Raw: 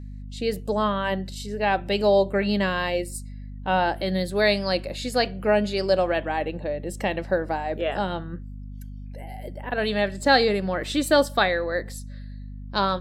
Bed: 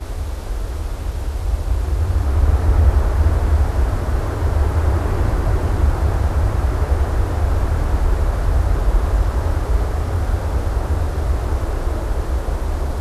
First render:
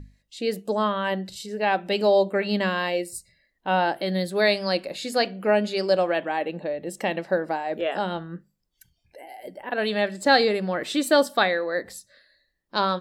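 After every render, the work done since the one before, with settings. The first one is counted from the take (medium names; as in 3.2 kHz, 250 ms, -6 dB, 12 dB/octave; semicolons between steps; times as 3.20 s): hum notches 50/100/150/200/250 Hz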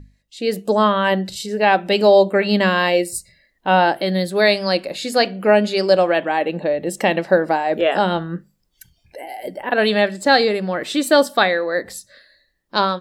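level rider gain up to 10 dB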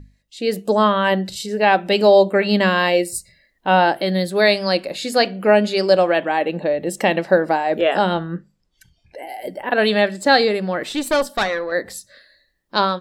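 8.14–9.22 s: distance through air 57 m; 10.89–11.72 s: valve stage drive 11 dB, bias 0.65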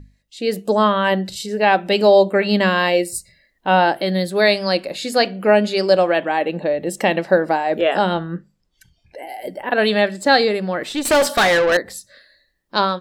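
11.05–11.77 s: overdrive pedal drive 26 dB, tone 4.7 kHz, clips at -8 dBFS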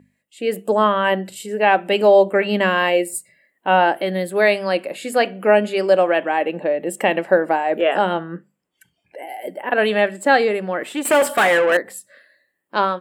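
high-pass 230 Hz 12 dB/octave; high-order bell 4.8 kHz -12 dB 1 oct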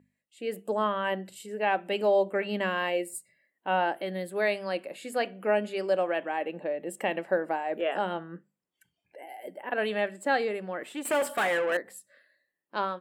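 trim -11.5 dB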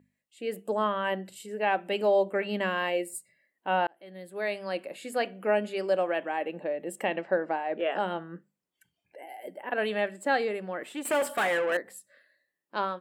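3.87–4.85 s: fade in; 7.06–7.99 s: low-pass 5.9 kHz 24 dB/octave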